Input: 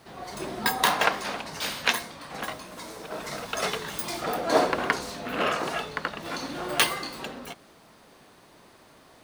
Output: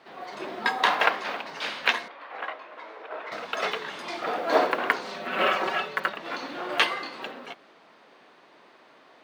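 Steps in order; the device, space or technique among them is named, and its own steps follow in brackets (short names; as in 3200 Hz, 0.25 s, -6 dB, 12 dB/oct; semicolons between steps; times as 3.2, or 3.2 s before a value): early digital voice recorder (BPF 300–3500 Hz; block floating point 7-bit); bell 2300 Hz +2.5 dB 2 oct; 2.08–3.32 three-band isolator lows -23 dB, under 340 Hz, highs -19 dB, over 3100 Hz; 5.04–6.13 comb 5.3 ms, depth 88%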